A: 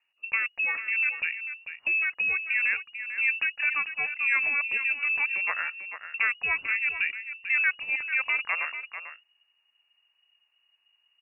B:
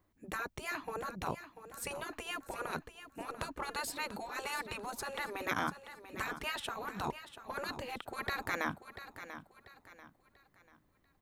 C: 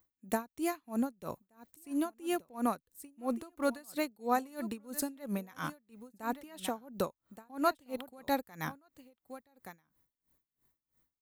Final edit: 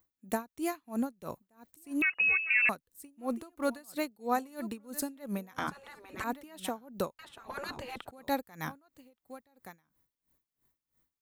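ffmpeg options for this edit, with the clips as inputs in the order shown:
-filter_complex "[1:a]asplit=2[a][b];[2:a]asplit=4[c][d][e][f];[c]atrim=end=2.022[g];[0:a]atrim=start=2.018:end=2.692[h];[d]atrim=start=2.688:end=5.582[i];[a]atrim=start=5.578:end=6.242[j];[e]atrim=start=6.238:end=7.192[k];[b]atrim=start=7.188:end=8.112[l];[f]atrim=start=8.108[m];[g][h]acrossfade=d=0.004:c1=hsin:c2=hsin[n];[n][i]acrossfade=d=0.004:c1=hsin:c2=hsin[o];[o][j]acrossfade=d=0.004:c1=hsin:c2=hsin[p];[p][k]acrossfade=d=0.004:c1=hsin:c2=hsin[q];[q][l]acrossfade=d=0.004:c1=hsin:c2=hsin[r];[r][m]acrossfade=d=0.004:c1=hsin:c2=hsin"

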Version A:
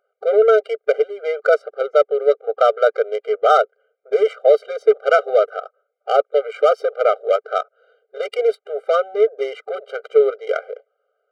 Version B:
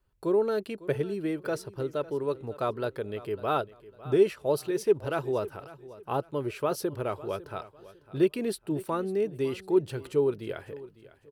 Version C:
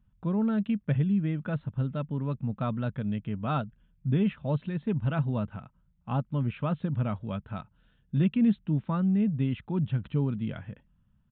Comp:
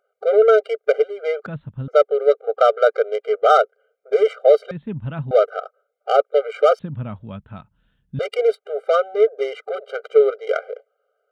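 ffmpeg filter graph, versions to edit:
-filter_complex "[2:a]asplit=3[a][b][c];[0:a]asplit=4[d][e][f][g];[d]atrim=end=1.462[h];[a]atrim=start=1.458:end=1.882[i];[e]atrim=start=1.878:end=4.712[j];[b]atrim=start=4.708:end=5.312[k];[f]atrim=start=5.308:end=6.792[l];[c]atrim=start=6.788:end=8.192[m];[g]atrim=start=8.188[n];[h][i]acrossfade=d=0.004:c1=hsin:c2=hsin[o];[o][j]acrossfade=d=0.004:c1=hsin:c2=hsin[p];[p][k]acrossfade=d=0.004:c1=hsin:c2=hsin[q];[q][l]acrossfade=d=0.004:c1=hsin:c2=hsin[r];[r][m]acrossfade=d=0.004:c1=hsin:c2=hsin[s];[s][n]acrossfade=d=0.004:c1=hsin:c2=hsin"

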